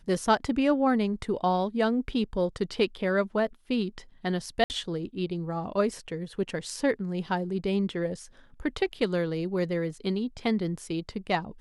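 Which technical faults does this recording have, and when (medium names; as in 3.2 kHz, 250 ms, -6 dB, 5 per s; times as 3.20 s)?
4.64–4.70 s: dropout 59 ms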